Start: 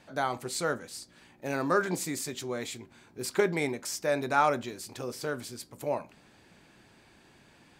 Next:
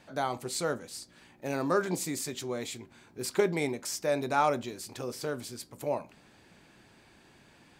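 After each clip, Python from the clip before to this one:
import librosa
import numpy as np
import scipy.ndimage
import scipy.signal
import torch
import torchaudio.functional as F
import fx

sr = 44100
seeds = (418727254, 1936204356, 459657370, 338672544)

y = fx.dynamic_eq(x, sr, hz=1600.0, q=1.6, threshold_db=-46.0, ratio=4.0, max_db=-5)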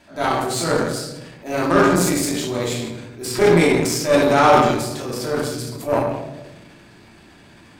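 y = fx.room_shoebox(x, sr, seeds[0], volume_m3=450.0, walls='mixed', distance_m=2.9)
y = fx.transient(y, sr, attack_db=-6, sustain_db=5)
y = fx.cheby_harmonics(y, sr, harmonics=(6, 7), levels_db=(-23, -26), full_scale_db=-8.0)
y = y * 10.0 ** (7.0 / 20.0)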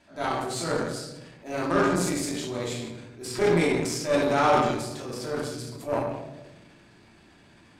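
y = scipy.signal.sosfilt(scipy.signal.butter(2, 11000.0, 'lowpass', fs=sr, output='sos'), x)
y = y * 10.0 ** (-8.0 / 20.0)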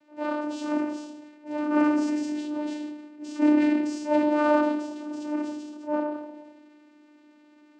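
y = fx.vocoder(x, sr, bands=8, carrier='saw', carrier_hz=299.0)
y = y * 10.0 ** (1.5 / 20.0)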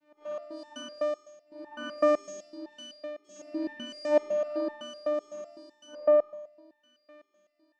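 y = fx.room_flutter(x, sr, wall_m=4.3, rt60_s=0.96)
y = fx.resonator_held(y, sr, hz=7.9, low_hz=150.0, high_hz=880.0)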